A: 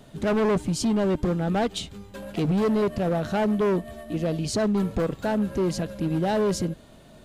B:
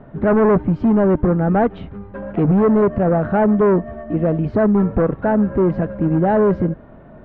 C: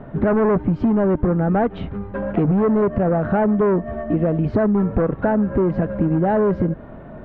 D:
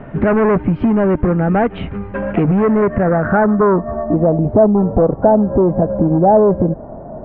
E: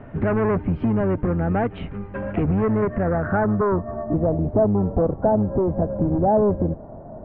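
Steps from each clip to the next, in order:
low-pass 1.7 kHz 24 dB/octave; trim +8.5 dB
compression, threshold -20 dBFS, peak gain reduction 8 dB; trim +4.5 dB
low-pass sweep 2.6 kHz -> 750 Hz, 2.60–4.44 s; trim +3.5 dB
octave divider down 1 oct, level -4 dB; trim -8 dB

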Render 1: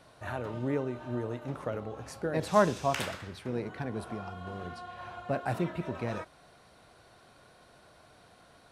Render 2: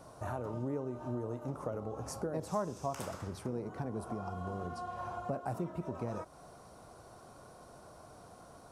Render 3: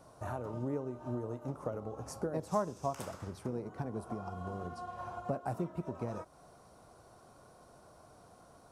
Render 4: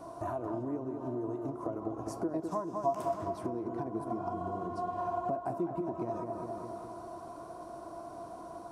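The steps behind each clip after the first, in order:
high-order bell 2.6 kHz -12 dB; compression 3:1, threshold -42 dBFS, peak gain reduction 17.5 dB; trim +5 dB
upward expansion 1.5:1, over -45 dBFS; trim +3 dB
feedback echo behind a low-pass 205 ms, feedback 56%, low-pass 2.2 kHz, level -7.5 dB; compression 3:1, threshold -46 dBFS, peak gain reduction 15 dB; small resonant body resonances 330/680/990 Hz, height 17 dB, ringing for 60 ms; trim +3.5 dB

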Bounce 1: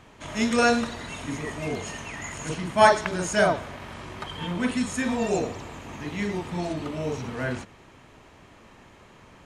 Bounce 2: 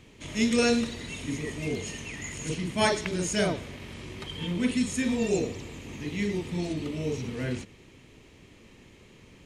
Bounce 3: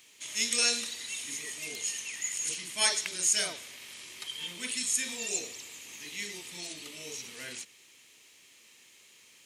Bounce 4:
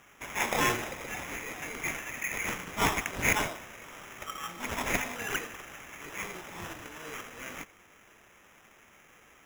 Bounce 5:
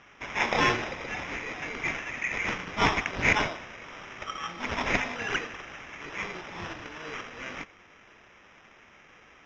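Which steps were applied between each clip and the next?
high-order bell 1 kHz -11 dB
differentiator; trim +8.5 dB
sample-and-hold 10×
elliptic low-pass 5.5 kHz, stop band 60 dB; trim +4 dB

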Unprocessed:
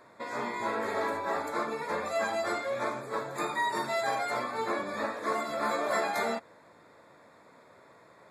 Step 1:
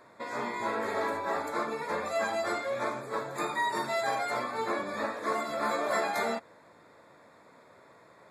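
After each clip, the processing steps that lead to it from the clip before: no audible change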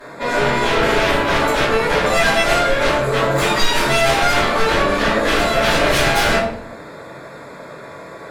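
sine folder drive 13 dB, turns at -17.5 dBFS; simulated room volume 83 m³, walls mixed, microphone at 2.6 m; trim -6.5 dB

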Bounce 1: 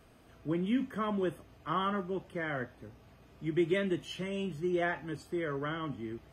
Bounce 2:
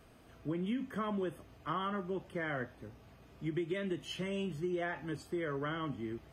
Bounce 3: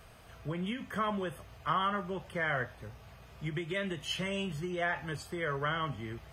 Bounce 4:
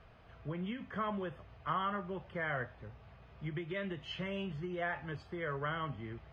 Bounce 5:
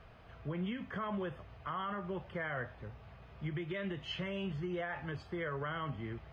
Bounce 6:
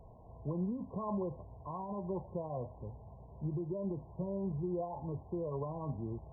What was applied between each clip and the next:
compression 10:1, threshold -32 dBFS, peak gain reduction 9 dB
peaking EQ 290 Hz -14.5 dB 1 oct; trim +7.5 dB
distance through air 250 m; trim -3 dB
peak limiter -32.5 dBFS, peak gain reduction 9.5 dB; trim +2.5 dB
brick-wall FIR low-pass 1.1 kHz; trim +2 dB

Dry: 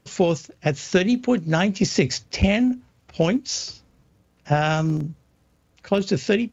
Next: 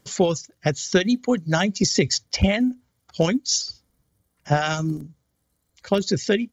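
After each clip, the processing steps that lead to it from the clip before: treble shelf 3.6 kHz +8 dB; band-stop 2.6 kHz, Q 6.1; reverb removal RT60 1.6 s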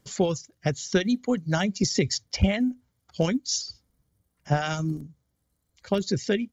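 bass shelf 190 Hz +5 dB; trim -5.5 dB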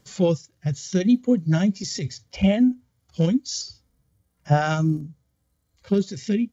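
harmonic-percussive split percussive -18 dB; trim +7 dB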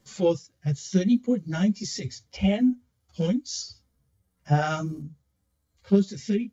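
three-phase chorus

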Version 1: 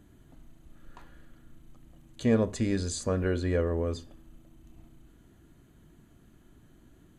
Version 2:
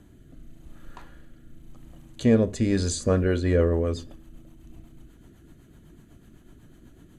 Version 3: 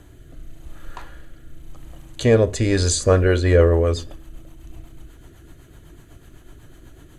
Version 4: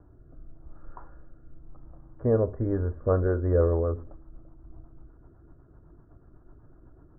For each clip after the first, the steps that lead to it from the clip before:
rotary cabinet horn 0.9 Hz, later 8 Hz, at 2.64 s; trim +7.5 dB
peaking EQ 210 Hz -13 dB 0.85 oct; trim +9 dB
steep low-pass 1.4 kHz 48 dB/octave; trim -8 dB

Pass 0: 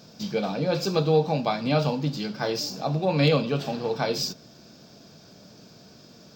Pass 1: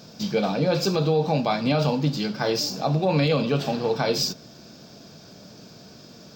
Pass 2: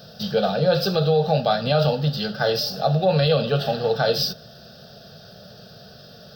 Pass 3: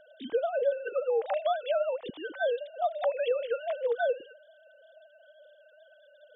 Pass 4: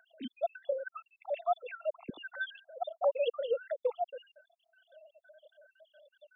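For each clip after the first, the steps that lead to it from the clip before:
peak limiter -16 dBFS, peak gain reduction 8.5 dB; trim +4 dB
static phaser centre 1.5 kHz, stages 8; trim +5.5 dB
formants replaced by sine waves; compression 6:1, threshold -18 dBFS, peak gain reduction 10 dB; trim -6 dB
random holes in the spectrogram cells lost 68%

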